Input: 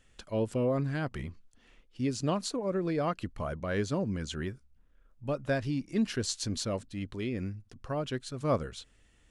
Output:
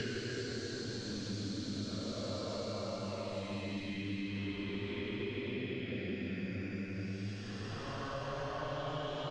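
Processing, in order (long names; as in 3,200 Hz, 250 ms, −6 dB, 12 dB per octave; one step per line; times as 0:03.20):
low-shelf EQ 380 Hz −7 dB
downward compressor, threshold −38 dBFS, peak gain reduction 12.5 dB
extreme stretch with random phases 5×, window 0.50 s, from 0:06.15
high-frequency loss of the air 170 metres
echo with shifted repeats 110 ms, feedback 64%, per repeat +90 Hz, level −22 dB
multiband upward and downward compressor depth 100%
level +3.5 dB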